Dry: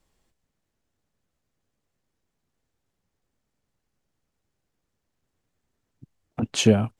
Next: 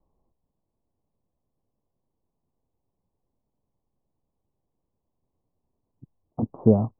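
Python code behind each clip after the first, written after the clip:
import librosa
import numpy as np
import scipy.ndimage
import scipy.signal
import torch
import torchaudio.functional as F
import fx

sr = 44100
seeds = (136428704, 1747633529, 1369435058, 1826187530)

y = scipy.signal.sosfilt(scipy.signal.butter(12, 1100.0, 'lowpass', fs=sr, output='sos'), x)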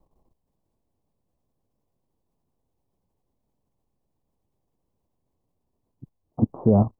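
y = fx.level_steps(x, sr, step_db=12)
y = y * librosa.db_to_amplitude(8.5)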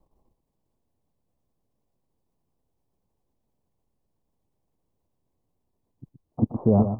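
y = x + 10.0 ** (-9.0 / 20.0) * np.pad(x, (int(121 * sr / 1000.0), 0))[:len(x)]
y = y * librosa.db_to_amplitude(-1.5)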